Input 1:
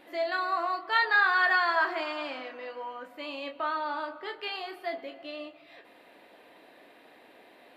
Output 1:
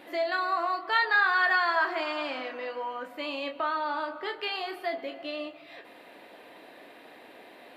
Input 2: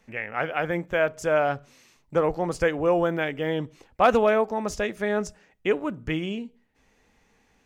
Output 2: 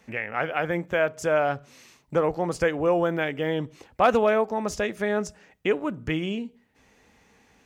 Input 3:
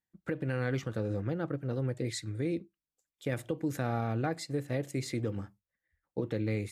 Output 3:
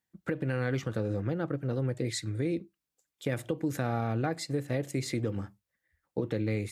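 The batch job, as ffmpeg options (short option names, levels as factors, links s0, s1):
-filter_complex "[0:a]highpass=56,asplit=2[s0][s1];[s1]acompressor=threshold=0.0158:ratio=6,volume=1.26[s2];[s0][s2]amix=inputs=2:normalize=0,volume=0.794"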